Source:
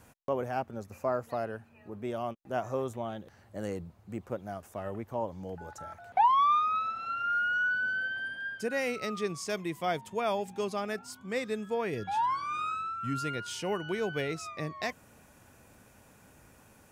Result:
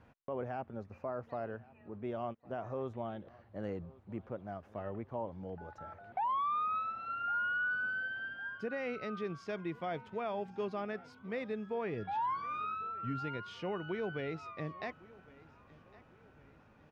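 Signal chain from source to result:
brickwall limiter −24.5 dBFS, peak gain reduction 8.5 dB
high-frequency loss of the air 290 metres
repeating echo 1,108 ms, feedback 45%, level −22 dB
level −3 dB

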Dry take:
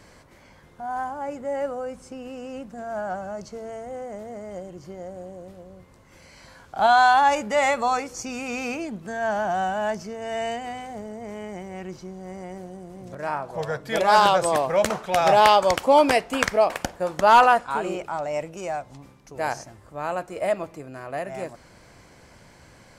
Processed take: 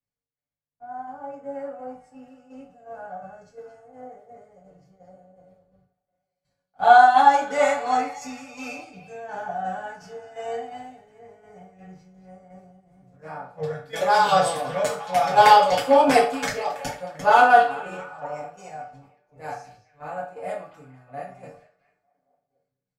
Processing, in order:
noise gate −46 dBFS, range −14 dB
comb filter 6.9 ms, depth 70%
echo through a band-pass that steps 225 ms, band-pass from 3,700 Hz, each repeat −0.7 octaves, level −7 dB
shaped tremolo saw down 2.8 Hz, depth 60%
convolution reverb RT60 0.50 s, pre-delay 3 ms, DRR −5.5 dB
multiband upward and downward expander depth 70%
level −10.5 dB

